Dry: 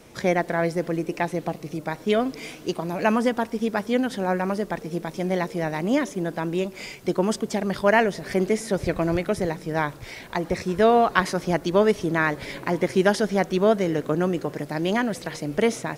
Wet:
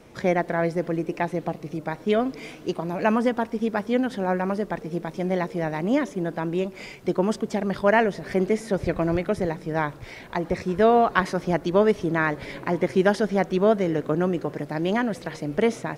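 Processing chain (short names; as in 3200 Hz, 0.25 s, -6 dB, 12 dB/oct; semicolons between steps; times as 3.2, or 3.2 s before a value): high shelf 3800 Hz -9 dB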